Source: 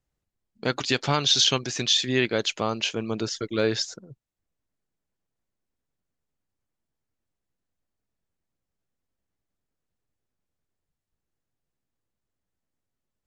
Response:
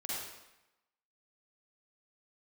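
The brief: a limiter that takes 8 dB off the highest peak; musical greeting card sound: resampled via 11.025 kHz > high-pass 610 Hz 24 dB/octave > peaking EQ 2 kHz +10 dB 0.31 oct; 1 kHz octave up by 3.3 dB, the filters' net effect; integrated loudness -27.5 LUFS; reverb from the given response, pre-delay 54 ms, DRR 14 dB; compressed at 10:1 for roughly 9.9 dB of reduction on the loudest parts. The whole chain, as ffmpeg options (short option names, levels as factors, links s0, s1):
-filter_complex "[0:a]equalizer=f=1000:t=o:g=4,acompressor=threshold=0.0501:ratio=10,alimiter=limit=0.0891:level=0:latency=1,asplit=2[s0][s1];[1:a]atrim=start_sample=2205,adelay=54[s2];[s1][s2]afir=irnorm=-1:irlink=0,volume=0.15[s3];[s0][s3]amix=inputs=2:normalize=0,aresample=11025,aresample=44100,highpass=f=610:w=0.5412,highpass=f=610:w=1.3066,equalizer=f=2000:t=o:w=0.31:g=10,volume=2.11"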